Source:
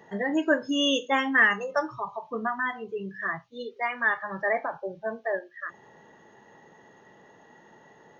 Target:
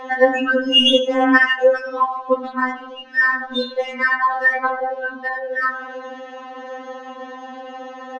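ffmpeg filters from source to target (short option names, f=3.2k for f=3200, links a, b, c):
-filter_complex "[0:a]highpass=410,bandreject=f=1.9k:w=28,acompressor=threshold=-38dB:ratio=8,asplit=2[a][b];[b]asplit=6[c][d][e][f][g][h];[c]adelay=93,afreqshift=-37,volume=-12dB[i];[d]adelay=186,afreqshift=-74,volume=-17.5dB[j];[e]adelay=279,afreqshift=-111,volume=-23dB[k];[f]adelay=372,afreqshift=-148,volume=-28.5dB[l];[g]adelay=465,afreqshift=-185,volume=-34.1dB[m];[h]adelay=558,afreqshift=-222,volume=-39.6dB[n];[i][j][k][l][m][n]amix=inputs=6:normalize=0[o];[a][o]amix=inputs=2:normalize=0,adynamicsmooth=sensitivity=4:basefreq=3.2k,aresample=22050,aresample=44100,alimiter=level_in=31dB:limit=-1dB:release=50:level=0:latency=1,afftfilt=real='re*3.46*eq(mod(b,12),0)':imag='im*3.46*eq(mod(b,12),0)':win_size=2048:overlap=0.75,volume=-2.5dB"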